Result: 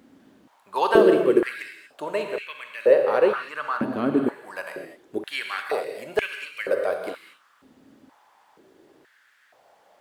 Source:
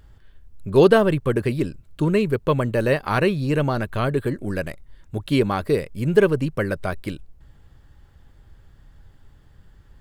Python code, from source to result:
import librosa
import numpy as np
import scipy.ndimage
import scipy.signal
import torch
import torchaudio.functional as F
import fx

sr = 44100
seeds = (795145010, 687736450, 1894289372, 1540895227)

y = fx.high_shelf(x, sr, hz=2500.0, db=-8.0, at=(2.23, 4.43))
y = fx.dmg_noise_colour(y, sr, seeds[0], colour='brown', level_db=-46.0)
y = fx.rev_gated(y, sr, seeds[1], gate_ms=260, shape='flat', drr_db=3.5)
y = fx.filter_held_highpass(y, sr, hz=2.1, low_hz=260.0, high_hz=2300.0)
y = y * 10.0 ** (-5.0 / 20.0)